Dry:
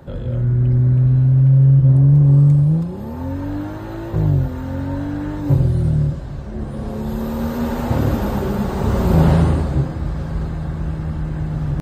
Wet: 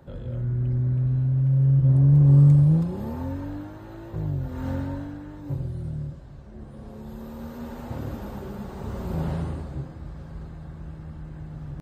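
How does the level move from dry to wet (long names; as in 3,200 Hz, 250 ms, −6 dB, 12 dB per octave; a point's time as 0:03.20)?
0:01.44 −9.5 dB
0:02.42 −3 dB
0:03.08 −3 dB
0:03.71 −12 dB
0:04.40 −12 dB
0:04.68 −2.5 dB
0:05.24 −15 dB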